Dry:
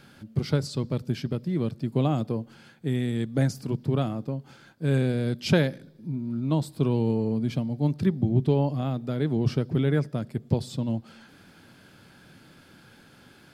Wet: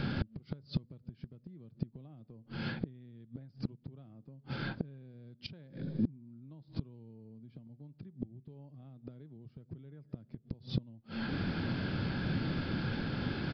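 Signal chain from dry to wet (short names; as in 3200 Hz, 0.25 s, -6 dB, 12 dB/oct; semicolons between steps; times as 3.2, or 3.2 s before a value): low shelf 310 Hz +11 dB; compressor 6:1, threshold -35 dBFS, peak gain reduction 24.5 dB; flipped gate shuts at -32 dBFS, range -28 dB; downsampling 11025 Hz; gain +12 dB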